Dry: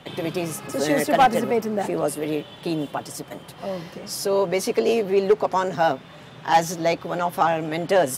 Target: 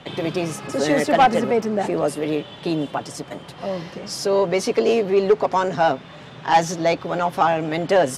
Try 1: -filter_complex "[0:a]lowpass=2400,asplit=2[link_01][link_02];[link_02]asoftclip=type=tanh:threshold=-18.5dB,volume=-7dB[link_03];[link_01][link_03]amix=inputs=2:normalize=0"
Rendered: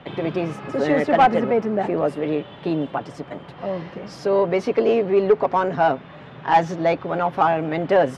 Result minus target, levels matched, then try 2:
8,000 Hz band −16.0 dB
-filter_complex "[0:a]lowpass=7300,asplit=2[link_01][link_02];[link_02]asoftclip=type=tanh:threshold=-18.5dB,volume=-7dB[link_03];[link_01][link_03]amix=inputs=2:normalize=0"

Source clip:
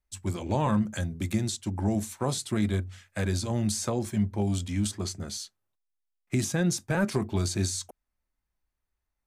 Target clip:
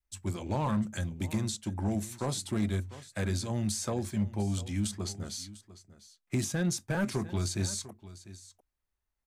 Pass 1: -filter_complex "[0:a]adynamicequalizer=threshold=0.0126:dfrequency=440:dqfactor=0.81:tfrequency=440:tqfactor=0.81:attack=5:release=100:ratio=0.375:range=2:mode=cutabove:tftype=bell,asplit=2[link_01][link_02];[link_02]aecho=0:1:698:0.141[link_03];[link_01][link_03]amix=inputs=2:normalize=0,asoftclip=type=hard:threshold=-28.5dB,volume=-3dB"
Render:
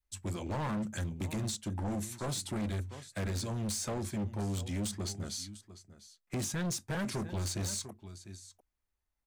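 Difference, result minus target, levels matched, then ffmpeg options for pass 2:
hard clipping: distortion +14 dB
-filter_complex "[0:a]adynamicequalizer=threshold=0.0126:dfrequency=440:dqfactor=0.81:tfrequency=440:tqfactor=0.81:attack=5:release=100:ratio=0.375:range=2:mode=cutabove:tftype=bell,asplit=2[link_01][link_02];[link_02]aecho=0:1:698:0.141[link_03];[link_01][link_03]amix=inputs=2:normalize=0,asoftclip=type=hard:threshold=-19.5dB,volume=-3dB"

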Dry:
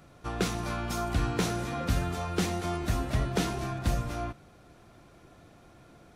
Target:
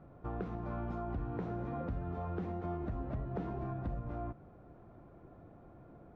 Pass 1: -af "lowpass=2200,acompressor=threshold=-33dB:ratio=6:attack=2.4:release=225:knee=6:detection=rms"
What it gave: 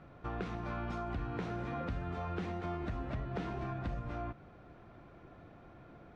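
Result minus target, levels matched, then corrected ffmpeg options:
2,000 Hz band +8.0 dB
-af "lowpass=930,acompressor=threshold=-33dB:ratio=6:attack=2.4:release=225:knee=6:detection=rms"

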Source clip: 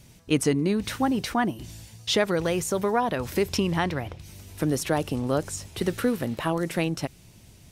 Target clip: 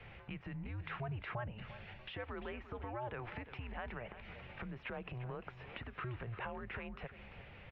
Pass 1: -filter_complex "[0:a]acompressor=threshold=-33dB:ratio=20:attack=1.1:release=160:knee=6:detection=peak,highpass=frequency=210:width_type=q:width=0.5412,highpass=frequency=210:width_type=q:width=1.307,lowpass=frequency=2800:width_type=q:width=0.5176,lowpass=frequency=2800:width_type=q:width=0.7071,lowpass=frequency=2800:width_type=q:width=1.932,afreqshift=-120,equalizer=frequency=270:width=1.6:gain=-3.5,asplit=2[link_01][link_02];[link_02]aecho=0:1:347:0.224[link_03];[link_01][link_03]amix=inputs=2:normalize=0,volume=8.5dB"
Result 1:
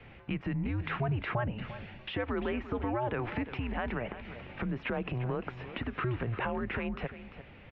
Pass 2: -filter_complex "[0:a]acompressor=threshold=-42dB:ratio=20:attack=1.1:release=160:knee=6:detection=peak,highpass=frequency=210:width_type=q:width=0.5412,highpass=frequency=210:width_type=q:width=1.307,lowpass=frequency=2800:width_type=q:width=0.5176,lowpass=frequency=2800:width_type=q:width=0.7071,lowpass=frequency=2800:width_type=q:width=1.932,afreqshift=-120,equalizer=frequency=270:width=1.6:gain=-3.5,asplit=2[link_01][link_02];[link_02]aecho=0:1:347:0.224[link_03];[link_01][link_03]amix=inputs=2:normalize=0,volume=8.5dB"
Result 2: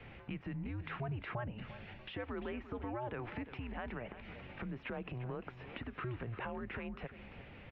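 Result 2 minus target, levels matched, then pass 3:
250 Hz band +3.5 dB
-filter_complex "[0:a]acompressor=threshold=-42dB:ratio=20:attack=1.1:release=160:knee=6:detection=peak,highpass=frequency=210:width_type=q:width=0.5412,highpass=frequency=210:width_type=q:width=1.307,lowpass=frequency=2800:width_type=q:width=0.5176,lowpass=frequency=2800:width_type=q:width=0.7071,lowpass=frequency=2800:width_type=q:width=1.932,afreqshift=-120,equalizer=frequency=270:width=1.6:gain=-12.5,asplit=2[link_01][link_02];[link_02]aecho=0:1:347:0.224[link_03];[link_01][link_03]amix=inputs=2:normalize=0,volume=8.5dB"

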